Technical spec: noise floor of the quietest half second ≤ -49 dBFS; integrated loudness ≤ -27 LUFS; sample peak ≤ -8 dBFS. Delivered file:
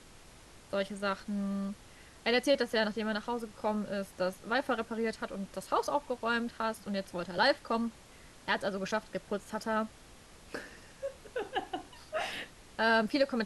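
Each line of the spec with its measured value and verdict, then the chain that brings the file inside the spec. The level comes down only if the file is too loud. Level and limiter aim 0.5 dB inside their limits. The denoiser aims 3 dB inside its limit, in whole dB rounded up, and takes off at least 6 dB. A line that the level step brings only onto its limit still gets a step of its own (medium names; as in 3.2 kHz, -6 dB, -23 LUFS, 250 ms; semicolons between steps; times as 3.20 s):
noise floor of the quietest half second -55 dBFS: pass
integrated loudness -33.5 LUFS: pass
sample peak -14.5 dBFS: pass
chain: none needed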